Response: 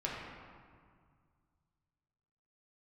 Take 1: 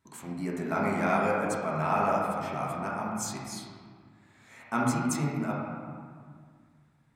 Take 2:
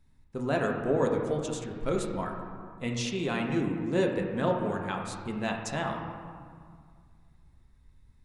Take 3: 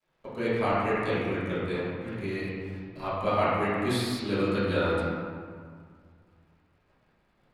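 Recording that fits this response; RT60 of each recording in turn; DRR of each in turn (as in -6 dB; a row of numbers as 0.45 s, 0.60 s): 1; 1.9 s, 2.0 s, 1.9 s; -5.0 dB, 1.0 dB, -13.5 dB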